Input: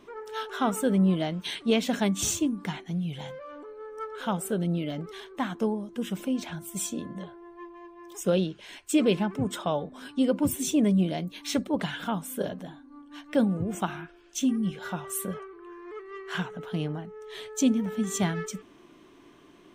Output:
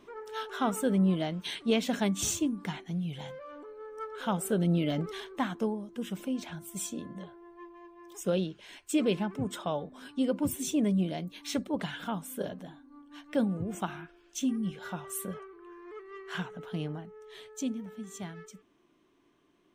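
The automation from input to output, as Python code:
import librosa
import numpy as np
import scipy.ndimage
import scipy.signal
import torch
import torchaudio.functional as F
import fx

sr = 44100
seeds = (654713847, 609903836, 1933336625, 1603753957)

y = fx.gain(x, sr, db=fx.line((4.11, -3.0), (5.01, 3.5), (5.74, -4.5), (16.95, -4.5), (18.09, -14.0)))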